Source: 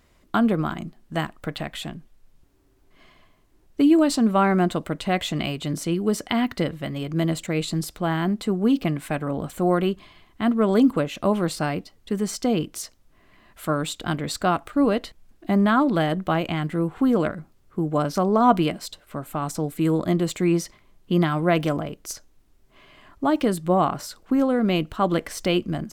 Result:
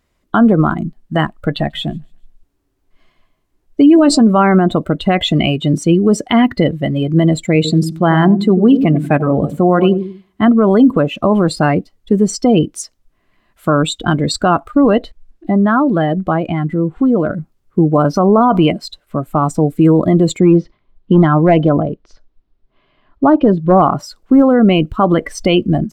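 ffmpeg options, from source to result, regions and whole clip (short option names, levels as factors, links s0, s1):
-filter_complex "[0:a]asettb=1/sr,asplit=3[s0][s1][s2];[s0]atrim=end=1.494[s3];[s1]atrim=start=1.49:end=4.23,asetpts=PTS-STARTPTS,afade=t=in:d=0.004:c=qsin,afade=t=out:st=2.736:d=0.004:c=qsin,asplit=2[s4][s5];[s5]adelay=14,volume=0.251[s6];[s4][s6]amix=inputs=2:normalize=0,atrim=end_sample=120834,aecho=1:1:142|284|426:0.0794|0.0342|0.0147,atrim=end_sample=120834[s7];[s2]atrim=start=4.226[s8];[s3][s7]acrossfade=d=0.004:c1=hsin:c2=qsin[s9];[s9][s8]acrossfade=d=0.004:c1=qsin:c2=hsin,asettb=1/sr,asplit=3[s10][s11][s12];[s10]atrim=end=7.554[s13];[s11]atrim=start=7.55:end=10.46,asetpts=PTS-STARTPTS,afade=t=in:d=0.004:c=qsin,afade=t=out:st=2.906:d=0.004:c=qsin,highpass=47,asplit=2[s14][s15];[s15]adelay=94,lowpass=f=910:p=1,volume=0.355,asplit=2[s16][s17];[s17]adelay=94,lowpass=f=910:p=1,volume=0.42,asplit=2[s18][s19];[s19]adelay=94,lowpass=f=910:p=1,volume=0.42,asplit=2[s20][s21];[s21]adelay=94,lowpass=f=910:p=1,volume=0.42,asplit=2[s22][s23];[s23]adelay=94,lowpass=f=910:p=1,volume=0.42[s24];[s14][s16][s18][s20][s22][s24]amix=inputs=6:normalize=0,atrim=end_sample=128331[s25];[s12]atrim=start=10.456[s26];[s13][s25]acrossfade=d=0.004:c1=hsin:c2=qsin[s27];[s27][s26]acrossfade=d=0.004:c1=qsin:c2=hsin,asettb=1/sr,asplit=3[s28][s29][s30];[s28]atrim=end=15.044[s31];[s29]atrim=start=15.04:end=17.3,asetpts=PTS-STARTPTS,afade=t=in:d=0.004:c=qsin,afade=t=out:st=2.256:d=0.004:c=qsin,highshelf=f=11000:g=-10,acompressor=threshold=0.0224:ratio=1.5:attack=3.2:release=140:knee=1:detection=peak[s32];[s30]atrim=start=17.296[s33];[s31][s32]acrossfade=d=0.004:c1=hsin:c2=qsin[s34];[s34][s33]acrossfade=d=0.004:c1=qsin:c2=hsin,asettb=1/sr,asplit=3[s35][s36][s37];[s35]atrim=end=20.394[s38];[s36]atrim=start=20.39:end=23.82,asetpts=PTS-STARTPTS,afade=t=in:d=0.004:c=qsin,afade=t=out:st=3.426:d=0.004:c=qsin,lowpass=f=4100:w=0.5412,lowpass=f=4100:w=1.3066,equalizer=f=2300:t=o:w=1.2:g=-4.5,asoftclip=type=hard:threshold=0.2[s39];[s37]atrim=start=23.816[s40];[s38][s39]acrossfade=d=0.004:c1=hsin:c2=qsin[s41];[s41][s40]acrossfade=d=0.004:c1=qsin:c2=hsin,afftdn=nr=19:nf=-30,alimiter=level_in=5.31:limit=0.891:release=50:level=0:latency=1,volume=0.891"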